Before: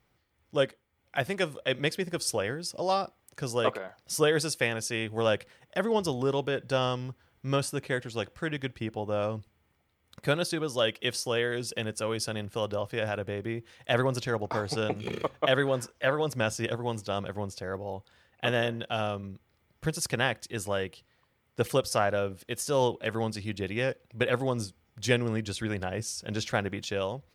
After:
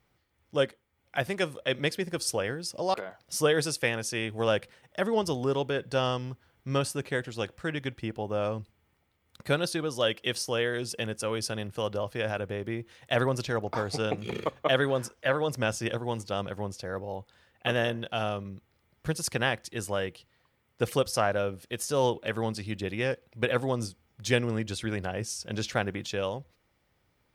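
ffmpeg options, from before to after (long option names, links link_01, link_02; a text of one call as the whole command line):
ffmpeg -i in.wav -filter_complex "[0:a]asplit=2[link_01][link_02];[link_01]atrim=end=2.942[link_03];[link_02]atrim=start=3.718[link_04];[link_03][link_04]acrossfade=duration=0.004:curve1=hsin:curve2=hsin" out.wav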